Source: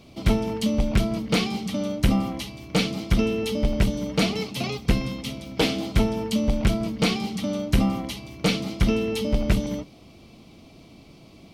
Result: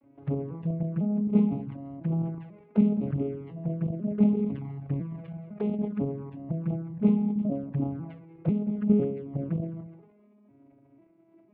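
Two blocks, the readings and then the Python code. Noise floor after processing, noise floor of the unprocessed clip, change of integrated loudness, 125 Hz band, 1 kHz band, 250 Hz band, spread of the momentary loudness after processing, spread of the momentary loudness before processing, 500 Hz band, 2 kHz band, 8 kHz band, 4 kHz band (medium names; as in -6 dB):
-60 dBFS, -50 dBFS, -4.0 dB, -3.5 dB, -13.5 dB, -1.5 dB, 13 LU, 6 LU, -6.5 dB, under -20 dB, under -40 dB, under -35 dB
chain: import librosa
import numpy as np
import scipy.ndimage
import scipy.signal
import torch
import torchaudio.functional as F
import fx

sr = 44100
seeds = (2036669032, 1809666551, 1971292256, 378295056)

y = fx.vocoder_arp(x, sr, chord='minor triad', root=49, every_ms=499)
y = scipy.signal.sosfilt(scipy.signal.butter(4, 1900.0, 'lowpass', fs=sr, output='sos'), y)
y = fx.dynamic_eq(y, sr, hz=1500.0, q=0.76, threshold_db=-42.0, ratio=4.0, max_db=-4)
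y = fx.level_steps(y, sr, step_db=9)
y = fx.env_flanger(y, sr, rest_ms=3.6, full_db=-26.5)
y = y + 10.0 ** (-19.5 / 20.0) * np.pad(y, (int(211 * sr / 1000.0), 0))[:len(y)]
y = fx.sustainer(y, sr, db_per_s=70.0)
y = F.gain(torch.from_numpy(y), 1.0).numpy()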